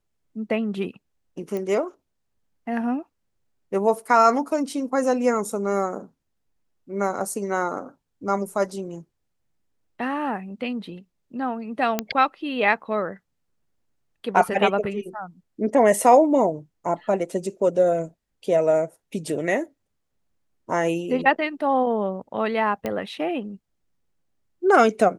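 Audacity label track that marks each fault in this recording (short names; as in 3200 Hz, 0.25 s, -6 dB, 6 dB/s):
1.570000	1.570000	pop -18 dBFS
11.990000	11.990000	pop -7 dBFS
22.860000	22.860000	pop -14 dBFS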